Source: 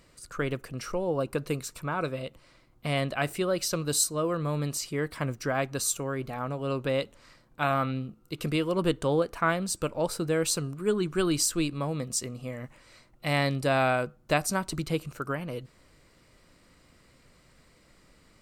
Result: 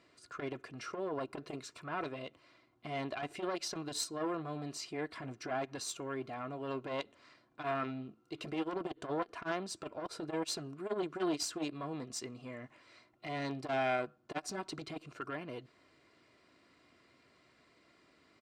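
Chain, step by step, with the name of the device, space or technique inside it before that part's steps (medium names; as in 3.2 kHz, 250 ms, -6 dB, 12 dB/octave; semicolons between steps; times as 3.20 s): valve radio (band-pass 94–4600 Hz; valve stage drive 20 dB, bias 0.55; transformer saturation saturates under 690 Hz); high-pass 170 Hz 6 dB/octave; comb 2.9 ms, depth 47%; trim -2 dB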